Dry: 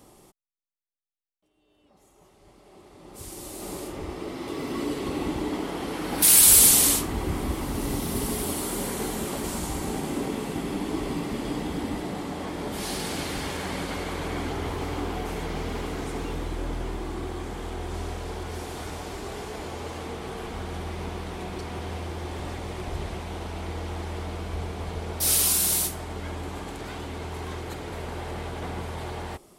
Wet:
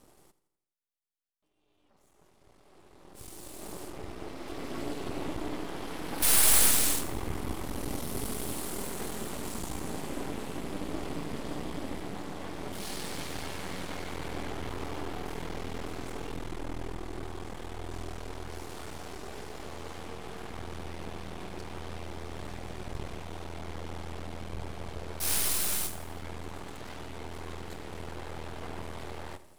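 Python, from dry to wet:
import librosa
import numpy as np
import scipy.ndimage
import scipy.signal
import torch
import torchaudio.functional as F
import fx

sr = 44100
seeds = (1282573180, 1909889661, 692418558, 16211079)

y = np.maximum(x, 0.0)
y = fx.echo_feedback(y, sr, ms=83, feedback_pct=54, wet_db=-16.5)
y = y * 10.0 ** (-3.0 / 20.0)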